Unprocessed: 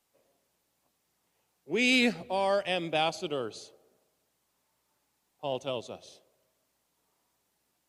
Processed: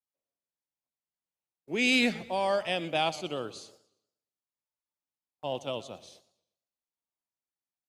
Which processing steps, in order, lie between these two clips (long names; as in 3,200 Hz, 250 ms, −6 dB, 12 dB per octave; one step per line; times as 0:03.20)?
noise gate −57 dBFS, range −25 dB
parametric band 420 Hz −4 dB 0.38 octaves
feedback echo with a swinging delay time 118 ms, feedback 36%, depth 168 cents, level −18 dB